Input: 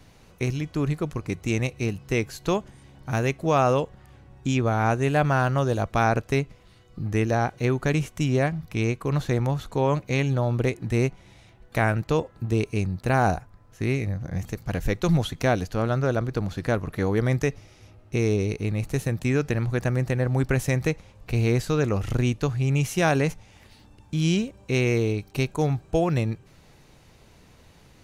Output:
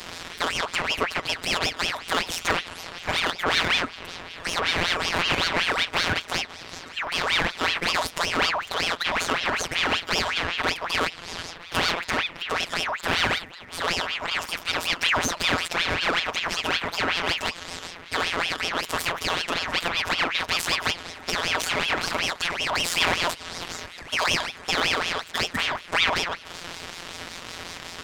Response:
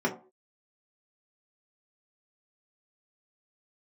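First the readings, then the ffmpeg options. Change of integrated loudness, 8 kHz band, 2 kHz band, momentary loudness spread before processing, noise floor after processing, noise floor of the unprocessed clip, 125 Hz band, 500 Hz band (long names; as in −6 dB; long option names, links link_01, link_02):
+0.5 dB, +7.0 dB, +8.0 dB, 7 LU, −43 dBFS, −54 dBFS, −16.5 dB, −6.0 dB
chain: -filter_complex "[0:a]asplit=2[link_01][link_02];[link_02]acompressor=threshold=-34dB:ratio=8,volume=2dB[link_03];[link_01][link_03]amix=inputs=2:normalize=0,asplit=2[link_04][link_05];[link_05]highpass=frequency=720:poles=1,volume=29dB,asoftclip=type=tanh:threshold=-8.5dB[link_06];[link_04][link_06]amix=inputs=2:normalize=0,lowpass=frequency=2000:poles=1,volume=-6dB,tiltshelf=frequency=890:gain=-4,afftfilt=real='hypot(re,im)*cos(PI*b)':imag='0':win_size=1024:overlap=0.75,aeval=exprs='val(0)*sin(2*PI*1900*n/s+1900*0.6/5.3*sin(2*PI*5.3*n/s))':channel_layout=same"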